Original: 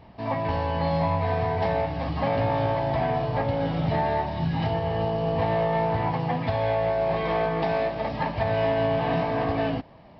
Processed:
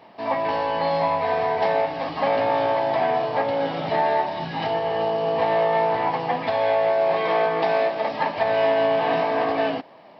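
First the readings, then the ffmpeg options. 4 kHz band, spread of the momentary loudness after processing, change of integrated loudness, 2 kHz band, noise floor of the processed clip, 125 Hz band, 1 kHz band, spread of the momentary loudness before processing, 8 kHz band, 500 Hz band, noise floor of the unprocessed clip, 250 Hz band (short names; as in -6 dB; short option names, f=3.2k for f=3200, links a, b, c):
+5.0 dB, 5 LU, +3.5 dB, +5.0 dB, -47 dBFS, -11.0 dB, +5.0 dB, 3 LU, n/a, +4.5 dB, -49 dBFS, -2.5 dB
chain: -af "highpass=350,volume=5dB"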